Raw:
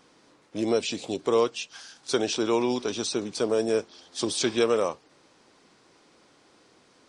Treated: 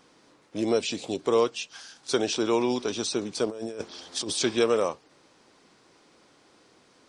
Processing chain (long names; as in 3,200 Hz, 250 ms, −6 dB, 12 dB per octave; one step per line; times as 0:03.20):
0:03.45–0:04.33: compressor whose output falls as the input rises −34 dBFS, ratio −1